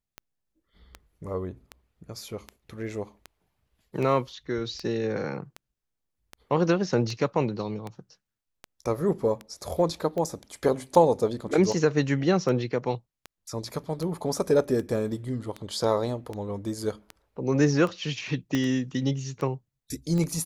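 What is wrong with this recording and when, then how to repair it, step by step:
tick 78 rpm -21 dBFS
18.55 pop -14 dBFS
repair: de-click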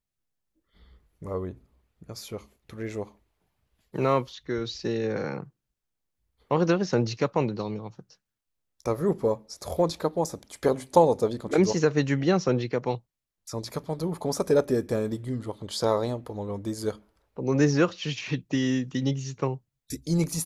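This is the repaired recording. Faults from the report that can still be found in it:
18.55 pop

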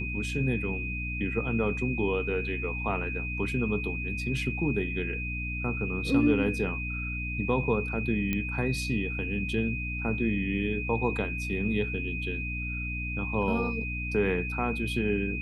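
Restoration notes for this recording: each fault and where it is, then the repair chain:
hum 60 Hz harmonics 5 -35 dBFS
tone 2500 Hz -34 dBFS
8.33 pop -16 dBFS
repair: de-click; de-hum 60 Hz, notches 5; notch 2500 Hz, Q 30

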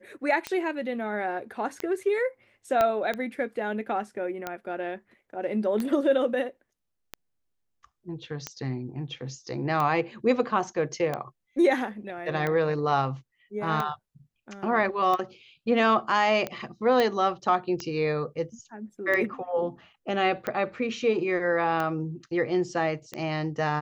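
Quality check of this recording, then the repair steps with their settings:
tick 45 rpm -16 dBFS
2.81 pop -11 dBFS
17 pop -12 dBFS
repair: de-click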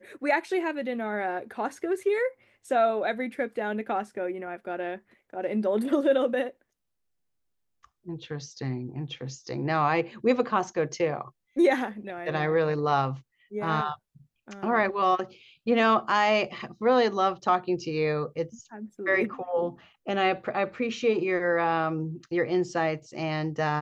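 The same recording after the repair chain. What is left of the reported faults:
2.81 pop
17 pop

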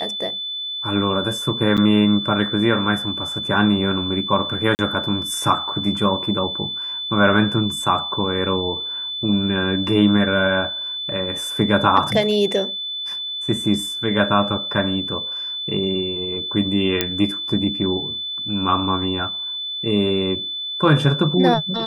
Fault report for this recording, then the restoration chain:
tone 3500 Hz -25 dBFS
1.77–1.78 gap 7.4 ms
4.75–4.79 gap 39 ms
17.01 pop -2 dBFS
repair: de-click; notch 3500 Hz, Q 30; interpolate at 1.77, 7.4 ms; interpolate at 4.75, 39 ms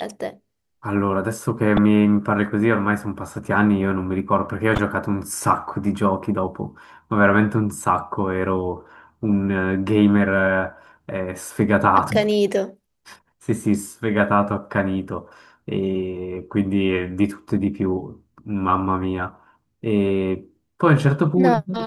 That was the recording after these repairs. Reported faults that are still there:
none

